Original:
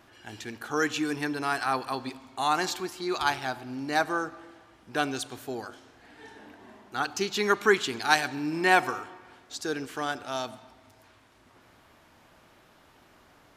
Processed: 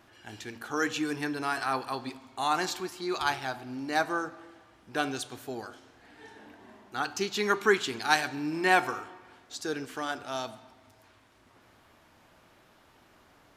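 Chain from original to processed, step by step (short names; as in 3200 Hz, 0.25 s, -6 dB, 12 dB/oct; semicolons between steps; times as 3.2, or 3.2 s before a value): flange 0.93 Hz, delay 8.6 ms, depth 2.4 ms, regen -82%; gain +2.5 dB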